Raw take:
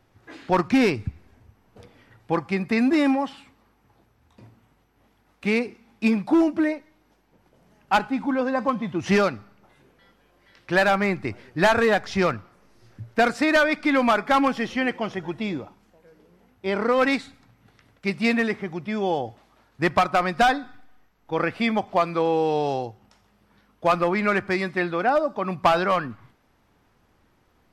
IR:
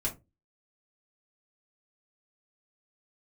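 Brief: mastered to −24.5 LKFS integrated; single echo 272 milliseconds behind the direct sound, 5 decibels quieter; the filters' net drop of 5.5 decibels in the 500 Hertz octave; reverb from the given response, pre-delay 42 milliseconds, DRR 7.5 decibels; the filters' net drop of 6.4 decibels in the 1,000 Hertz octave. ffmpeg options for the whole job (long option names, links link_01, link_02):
-filter_complex "[0:a]equalizer=frequency=500:width_type=o:gain=-5,equalizer=frequency=1000:width_type=o:gain=-7,aecho=1:1:272:0.562,asplit=2[link_01][link_02];[1:a]atrim=start_sample=2205,adelay=42[link_03];[link_02][link_03]afir=irnorm=-1:irlink=0,volume=-11.5dB[link_04];[link_01][link_04]amix=inputs=2:normalize=0"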